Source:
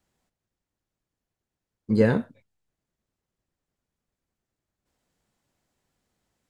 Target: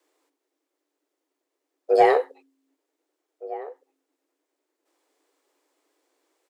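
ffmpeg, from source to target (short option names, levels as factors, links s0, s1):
-filter_complex "[0:a]asplit=2[s0][s1];[s1]adelay=1516,volume=0.126,highshelf=f=4000:g=-34.1[s2];[s0][s2]amix=inputs=2:normalize=0,afreqshift=270,acontrast=86,volume=0.708"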